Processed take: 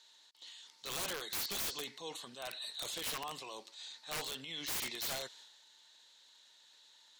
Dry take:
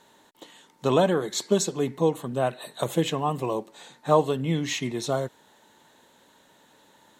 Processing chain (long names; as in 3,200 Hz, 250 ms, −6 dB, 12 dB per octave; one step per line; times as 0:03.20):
resonant band-pass 4,500 Hz, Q 2.6
transient designer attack −5 dB, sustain +7 dB
wrap-around overflow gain 37.5 dB
level +5.5 dB